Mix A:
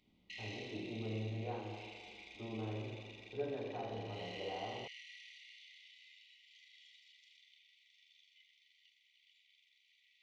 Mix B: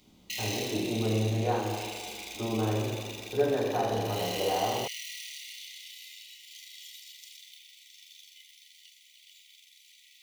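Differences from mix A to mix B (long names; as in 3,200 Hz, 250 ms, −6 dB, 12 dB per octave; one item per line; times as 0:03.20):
speech +12.0 dB
master: remove head-to-tape spacing loss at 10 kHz 41 dB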